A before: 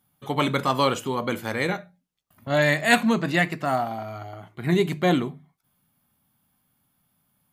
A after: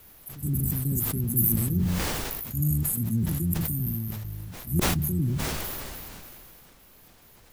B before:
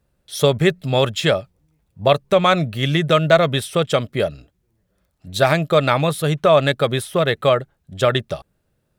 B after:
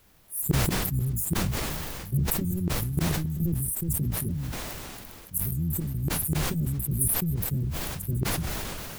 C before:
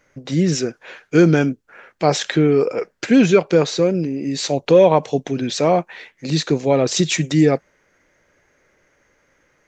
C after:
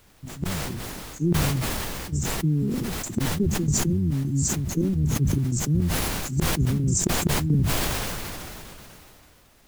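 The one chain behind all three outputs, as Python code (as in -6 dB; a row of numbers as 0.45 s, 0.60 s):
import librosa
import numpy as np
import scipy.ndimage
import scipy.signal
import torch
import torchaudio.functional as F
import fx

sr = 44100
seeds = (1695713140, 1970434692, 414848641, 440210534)

y = fx.octave_divider(x, sr, octaves=1, level_db=-3.0)
y = scipy.signal.sosfilt(scipy.signal.cheby2(4, 80, [790.0, 3100.0], 'bandstop', fs=sr, output='sos'), y)
y = fx.dispersion(y, sr, late='lows', ms=65.0, hz=1900.0)
y = fx.step_gate(y, sr, bpm=106, pattern='xx.xx.x.x', floor_db=-12.0, edge_ms=4.5)
y = fx.gate_flip(y, sr, shuts_db=-14.0, range_db=-37)
y = fx.peak_eq(y, sr, hz=360.0, db=11.0, octaves=0.57)
y = fx.rider(y, sr, range_db=4, speed_s=0.5)
y = fx.tilt_eq(y, sr, slope=3.0)
y = fx.dmg_noise_colour(y, sr, seeds[0], colour='pink', level_db=-66.0)
y = fx.sustainer(y, sr, db_per_s=20.0)
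y = y * 10.0 ** (-9 / 20.0) / np.max(np.abs(y))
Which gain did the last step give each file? +9.0 dB, +4.5 dB, +9.0 dB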